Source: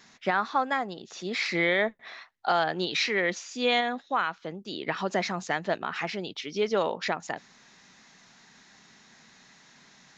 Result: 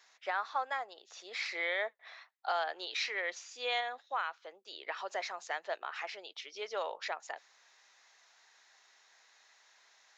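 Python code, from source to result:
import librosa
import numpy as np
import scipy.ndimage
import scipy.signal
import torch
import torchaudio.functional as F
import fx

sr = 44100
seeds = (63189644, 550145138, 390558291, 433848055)

y = scipy.signal.sosfilt(scipy.signal.butter(4, 520.0, 'highpass', fs=sr, output='sos'), x)
y = y * 10.0 ** (-8.0 / 20.0)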